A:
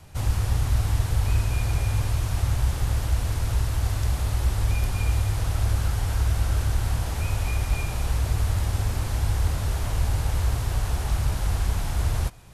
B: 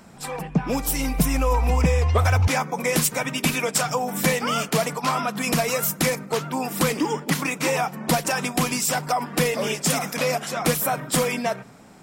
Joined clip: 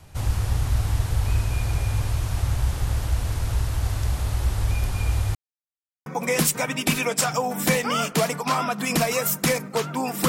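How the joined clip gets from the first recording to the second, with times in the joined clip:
A
5.35–6.06 mute
6.06 switch to B from 2.63 s

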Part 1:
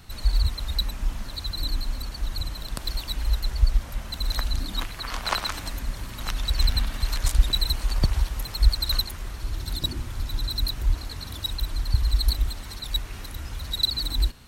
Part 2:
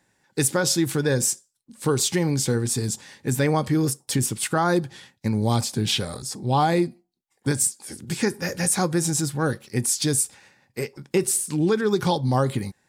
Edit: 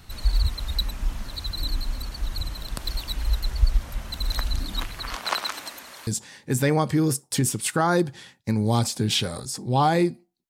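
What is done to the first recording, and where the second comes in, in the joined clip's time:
part 1
5.14–6.07 HPF 200 Hz -> 620 Hz
6.07 switch to part 2 from 2.84 s

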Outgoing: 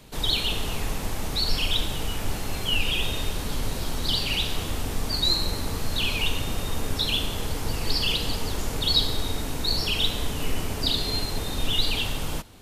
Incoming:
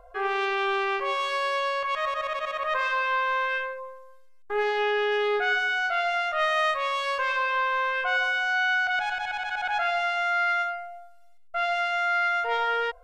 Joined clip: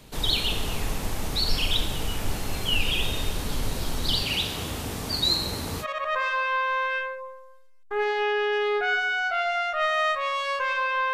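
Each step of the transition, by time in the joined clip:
outgoing
4.22–5.86 HPF 71 Hz 12 dB/oct
5.83 switch to incoming from 2.42 s, crossfade 0.06 s

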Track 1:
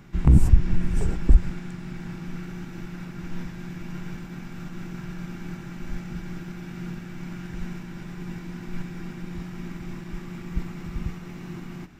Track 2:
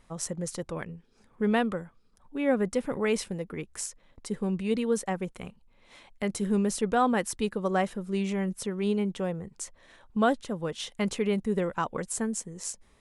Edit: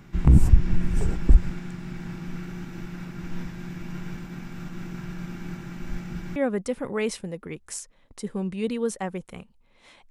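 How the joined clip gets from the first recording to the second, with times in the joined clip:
track 1
6.36 switch to track 2 from 2.43 s

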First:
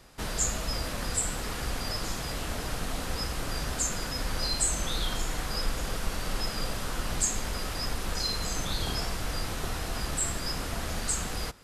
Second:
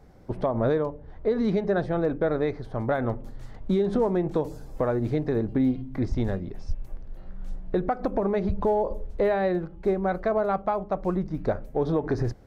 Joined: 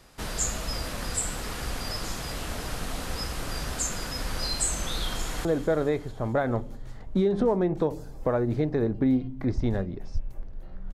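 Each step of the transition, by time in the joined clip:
first
5.03–5.45 echo throw 0.22 s, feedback 65%, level -13.5 dB
5.45 switch to second from 1.99 s

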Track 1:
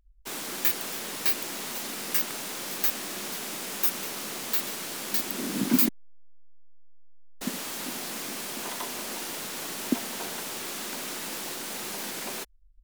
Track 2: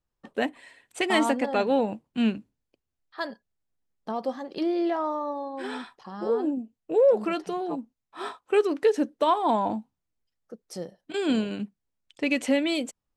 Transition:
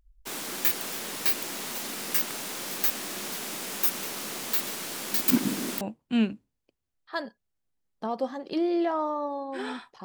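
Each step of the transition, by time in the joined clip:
track 1
5.28–5.81 reverse
5.81 switch to track 2 from 1.86 s

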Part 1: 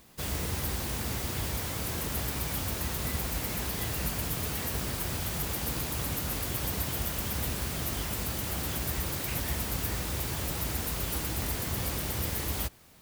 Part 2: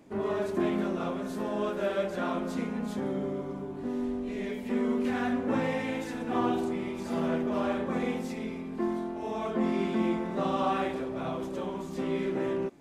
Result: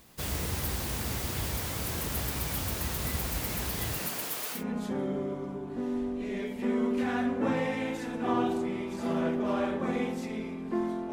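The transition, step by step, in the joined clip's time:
part 1
3.97–4.64 HPF 170 Hz -> 790 Hz
4.58 switch to part 2 from 2.65 s, crossfade 0.12 s

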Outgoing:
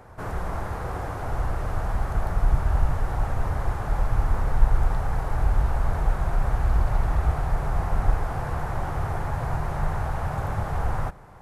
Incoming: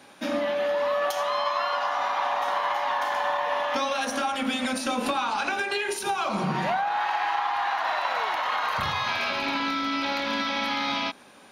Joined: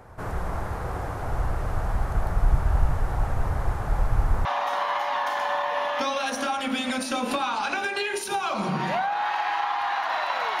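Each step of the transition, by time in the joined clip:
outgoing
4.45 switch to incoming from 2.2 s

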